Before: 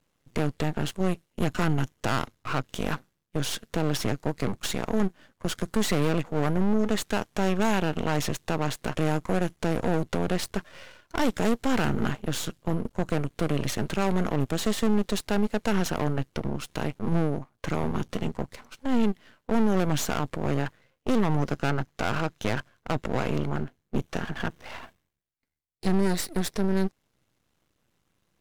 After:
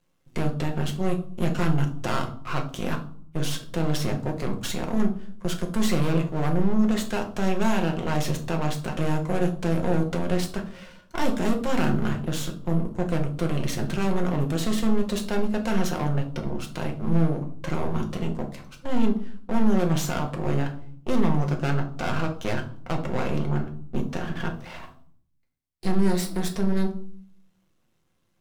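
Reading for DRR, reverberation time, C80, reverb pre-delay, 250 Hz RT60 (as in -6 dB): 2.0 dB, 0.55 s, 16.0 dB, 5 ms, 0.85 s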